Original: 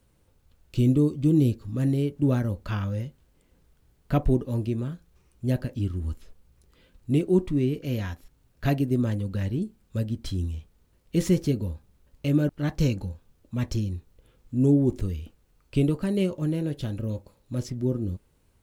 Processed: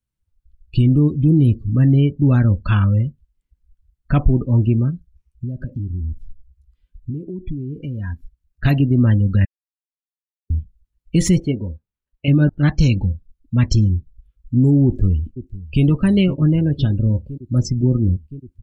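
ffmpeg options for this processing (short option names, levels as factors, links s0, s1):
-filter_complex "[0:a]asettb=1/sr,asplit=3[s0][s1][s2];[s0]atrim=end=4.904[s3];[s1]atrim=start=4.9:end=8.65,asetpts=PTS-STARTPTS,afade=t=in:d=0.004:c=qsin,afade=t=out:st=3.746:d=0.004:c=qsin,acompressor=threshold=0.02:ratio=16:attack=3.2:release=140:knee=1:detection=peak[s4];[s2]atrim=start=8.646[s5];[s3][s4]acrossfade=d=0.004:c1=hsin:c2=qsin[s6];[s6][s5]acrossfade=d=0.004:c1=qsin:c2=hsin,asettb=1/sr,asplit=3[s7][s8][s9];[s7]atrim=end=11.404[s10];[s8]atrim=start=11.4:end=12.28,asetpts=PTS-STARTPTS,afade=t=in:d=0.004:c=qsin,afade=t=out:st=0.876:d=0.004:c=qsin,bass=f=250:g=-11,treble=f=4000:g=-11[s11];[s9]atrim=start=12.276[s12];[s10][s11]acrossfade=d=0.004:c1=hsin:c2=qsin[s13];[s13][s12]acrossfade=d=0.004:c1=qsin:c2=hsin,asplit=2[s14][s15];[s15]afade=t=in:st=14.85:d=0.01,afade=t=out:st=15.84:d=0.01,aecho=0:1:510|1020|1530|2040|2550|3060|3570|4080|4590|5100|5610|6120:0.141254|0.120066|0.102056|0.0867475|0.0737353|0.062675|0.0532738|0.0452827|0.0384903|0.0327168|0.0278092|0.0236379[s16];[s14][s16]amix=inputs=2:normalize=0,asplit=3[s17][s18][s19];[s17]atrim=end=9.45,asetpts=PTS-STARTPTS,afade=t=out:st=9.446:d=0.004:c=hsin[s20];[s18]atrim=start=9.45:end=10.5,asetpts=PTS-STARTPTS,volume=0[s21];[s19]atrim=start=10.5,asetpts=PTS-STARTPTS,afade=t=in:d=0.004:c=hsin[s22];[s20][s21][s22]concat=n=3:v=0:a=1,afftdn=nr=33:nf=-41,equalizer=f=500:w=0.77:g=-11,alimiter=level_in=10.6:limit=0.891:release=50:level=0:latency=1,volume=0.531"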